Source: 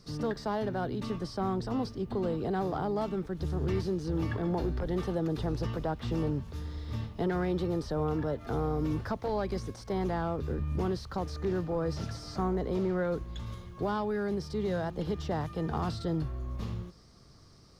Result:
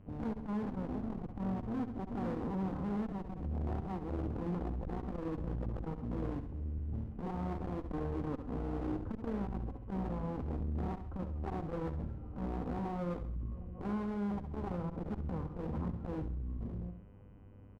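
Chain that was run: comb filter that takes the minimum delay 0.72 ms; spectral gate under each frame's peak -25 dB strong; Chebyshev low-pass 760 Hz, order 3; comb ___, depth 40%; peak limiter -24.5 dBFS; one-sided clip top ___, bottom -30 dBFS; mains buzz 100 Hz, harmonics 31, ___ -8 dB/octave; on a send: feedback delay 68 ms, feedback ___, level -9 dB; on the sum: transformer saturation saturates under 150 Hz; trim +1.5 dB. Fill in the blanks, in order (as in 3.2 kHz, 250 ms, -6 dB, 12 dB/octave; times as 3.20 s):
3.9 ms, -41 dBFS, -61 dBFS, 41%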